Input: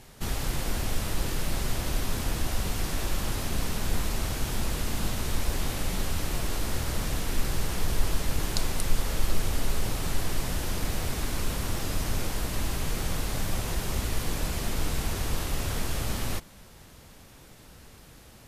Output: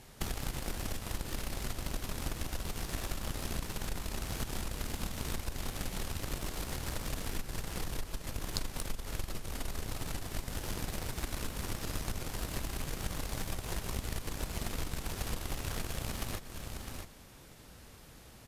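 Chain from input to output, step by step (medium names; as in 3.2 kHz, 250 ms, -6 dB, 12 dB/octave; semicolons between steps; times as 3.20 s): delay 654 ms -11.5 dB; compression 6:1, threshold -34 dBFS, peak gain reduction 18 dB; Chebyshev shaper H 3 -21 dB, 7 -24 dB, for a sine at -20 dBFS; trim +7 dB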